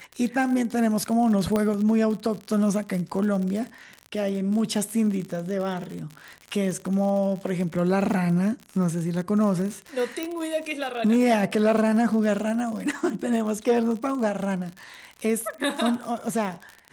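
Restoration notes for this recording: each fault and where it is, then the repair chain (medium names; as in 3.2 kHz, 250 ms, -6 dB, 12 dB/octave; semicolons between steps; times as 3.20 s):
crackle 59 per s -30 dBFS
1.56 s: pop -12 dBFS
10.23 s: pop -14 dBFS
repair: de-click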